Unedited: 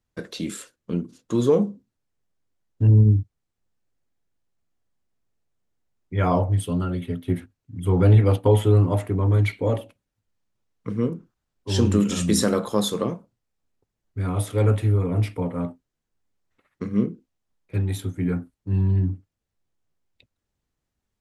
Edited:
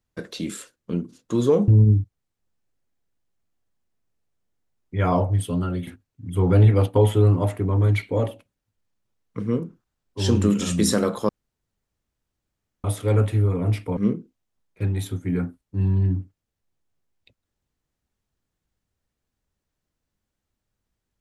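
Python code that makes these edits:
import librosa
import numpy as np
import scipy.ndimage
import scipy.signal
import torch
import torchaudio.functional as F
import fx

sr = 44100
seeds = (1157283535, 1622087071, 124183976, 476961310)

y = fx.edit(x, sr, fx.cut(start_s=1.68, length_s=1.19),
    fx.cut(start_s=7.06, length_s=0.31),
    fx.room_tone_fill(start_s=12.79, length_s=1.55),
    fx.cut(start_s=15.47, length_s=1.43), tone=tone)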